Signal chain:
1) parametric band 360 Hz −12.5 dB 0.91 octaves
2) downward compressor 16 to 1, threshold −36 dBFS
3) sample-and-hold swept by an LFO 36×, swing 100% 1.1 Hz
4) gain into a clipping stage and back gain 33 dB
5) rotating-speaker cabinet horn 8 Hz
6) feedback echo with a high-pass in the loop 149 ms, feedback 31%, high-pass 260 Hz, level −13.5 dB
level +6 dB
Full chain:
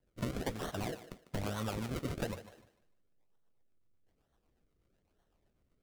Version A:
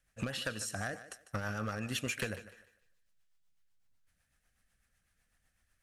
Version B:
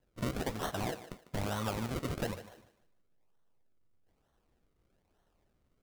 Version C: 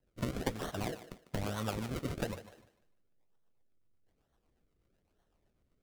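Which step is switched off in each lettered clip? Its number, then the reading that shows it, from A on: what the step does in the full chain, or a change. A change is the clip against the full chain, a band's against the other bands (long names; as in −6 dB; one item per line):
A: 3, change in crest factor +4.0 dB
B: 5, 1 kHz band +2.0 dB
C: 4, distortion level −15 dB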